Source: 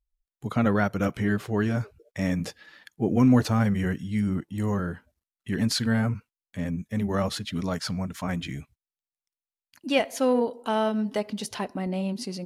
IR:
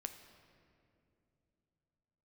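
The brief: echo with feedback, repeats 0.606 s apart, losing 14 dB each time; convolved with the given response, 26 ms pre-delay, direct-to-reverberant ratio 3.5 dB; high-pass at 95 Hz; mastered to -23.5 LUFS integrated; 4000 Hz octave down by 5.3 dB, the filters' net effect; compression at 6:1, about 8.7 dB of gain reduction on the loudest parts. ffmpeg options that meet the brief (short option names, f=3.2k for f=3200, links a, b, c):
-filter_complex "[0:a]highpass=95,equalizer=f=4k:t=o:g=-7,acompressor=threshold=-24dB:ratio=6,aecho=1:1:606|1212:0.2|0.0399,asplit=2[a][b];[1:a]atrim=start_sample=2205,adelay=26[c];[b][c]afir=irnorm=-1:irlink=0,volume=-0.5dB[d];[a][d]amix=inputs=2:normalize=0,volume=5.5dB"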